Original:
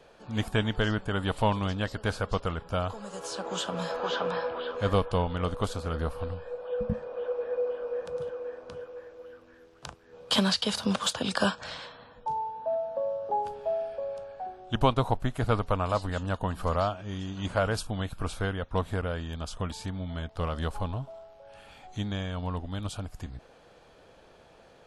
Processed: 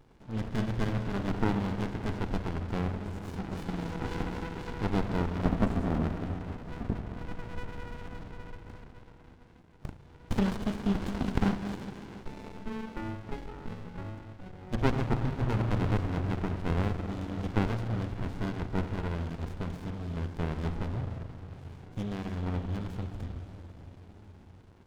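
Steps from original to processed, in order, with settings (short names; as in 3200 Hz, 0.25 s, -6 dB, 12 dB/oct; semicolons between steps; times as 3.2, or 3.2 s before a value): treble ducked by the level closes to 2800 Hz, closed at -26 dBFS; 5.45–6.03 graphic EQ 250/500/2000/4000/8000 Hz +9/+7/-5/-11/+11 dB; diffused feedback echo 0.611 s, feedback 50%, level -14 dB; spring tank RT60 2.3 s, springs 35/44 ms, chirp 70 ms, DRR 4.5 dB; running maximum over 65 samples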